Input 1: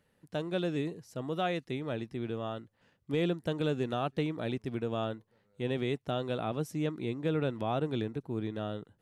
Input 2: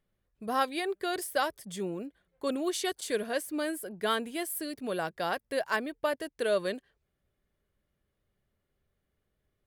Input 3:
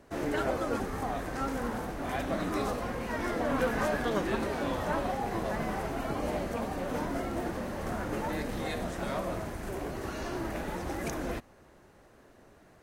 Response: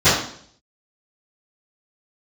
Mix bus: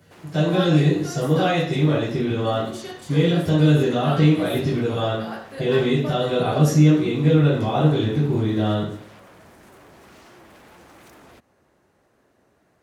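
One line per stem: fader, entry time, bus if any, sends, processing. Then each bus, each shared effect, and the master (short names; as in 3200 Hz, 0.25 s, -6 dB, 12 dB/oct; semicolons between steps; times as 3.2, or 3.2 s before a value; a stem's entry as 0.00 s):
+1.0 dB, 0.00 s, send -10 dB, high shelf 3900 Hz +11 dB; limiter -28 dBFS, peak gain reduction 8.5 dB
-8.5 dB, 0.00 s, send -21.5 dB, dry
-4.5 dB, 0.00 s, no send, compressor, threshold -35 dBFS, peak gain reduction 11 dB; wavefolder -38.5 dBFS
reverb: on, RT60 0.60 s, pre-delay 3 ms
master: HPF 74 Hz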